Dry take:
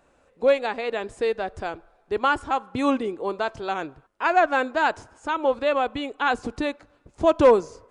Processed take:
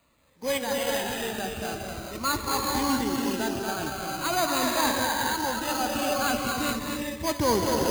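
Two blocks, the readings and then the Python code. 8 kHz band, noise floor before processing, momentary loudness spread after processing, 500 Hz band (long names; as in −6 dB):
can't be measured, −62 dBFS, 7 LU, −7.0 dB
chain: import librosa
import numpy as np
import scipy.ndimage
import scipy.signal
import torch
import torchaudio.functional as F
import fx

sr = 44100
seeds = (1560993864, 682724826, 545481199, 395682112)

y = fx.cvsd(x, sr, bps=32000)
y = scipy.signal.sosfilt(scipy.signal.butter(2, 52.0, 'highpass', fs=sr, output='sos'), y)
y = fx.peak_eq(y, sr, hz=460.0, db=-11.5, octaves=0.94)
y = fx.transient(y, sr, attack_db=-2, sustain_db=7)
y = y + 10.0 ** (-5.0 / 20.0) * np.pad(y, (int(235 * sr / 1000.0), 0))[:len(y)]
y = fx.rev_gated(y, sr, seeds[0], gate_ms=460, shape='rising', drr_db=0.0)
y = np.repeat(y[::8], 8)[:len(y)]
y = fx.notch_cascade(y, sr, direction='falling', hz=0.44)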